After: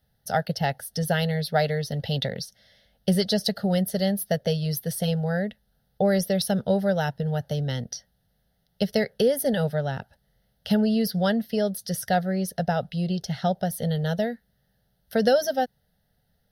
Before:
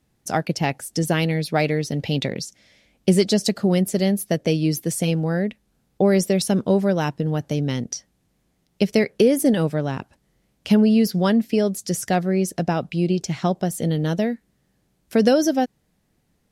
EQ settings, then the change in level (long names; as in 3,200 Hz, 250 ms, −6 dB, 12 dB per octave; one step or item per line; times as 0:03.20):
high-shelf EQ 12,000 Hz +8 dB
phaser with its sweep stopped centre 1,600 Hz, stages 8
0.0 dB